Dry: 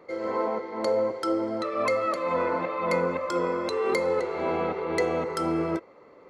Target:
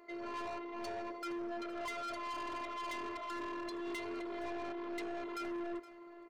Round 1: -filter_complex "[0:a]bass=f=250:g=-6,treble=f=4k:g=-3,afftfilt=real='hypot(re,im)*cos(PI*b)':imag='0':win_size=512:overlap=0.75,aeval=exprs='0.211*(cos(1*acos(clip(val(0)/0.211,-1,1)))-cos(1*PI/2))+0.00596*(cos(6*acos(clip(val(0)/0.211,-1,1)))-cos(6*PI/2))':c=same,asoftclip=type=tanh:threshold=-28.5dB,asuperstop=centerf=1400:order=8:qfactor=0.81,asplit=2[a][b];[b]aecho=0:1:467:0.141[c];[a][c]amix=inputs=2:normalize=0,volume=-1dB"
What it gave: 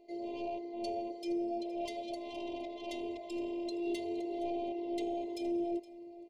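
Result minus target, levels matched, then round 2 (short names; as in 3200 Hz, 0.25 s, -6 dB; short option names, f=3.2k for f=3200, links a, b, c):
1000 Hz band -5.0 dB; soft clip: distortion -6 dB
-filter_complex "[0:a]bass=f=250:g=-6,treble=f=4k:g=-3,afftfilt=real='hypot(re,im)*cos(PI*b)':imag='0':win_size=512:overlap=0.75,aeval=exprs='0.211*(cos(1*acos(clip(val(0)/0.211,-1,1)))-cos(1*PI/2))+0.00596*(cos(6*acos(clip(val(0)/0.211,-1,1)))-cos(6*PI/2))':c=same,asoftclip=type=tanh:threshold=-38dB,asplit=2[a][b];[b]aecho=0:1:467:0.141[c];[a][c]amix=inputs=2:normalize=0,volume=-1dB"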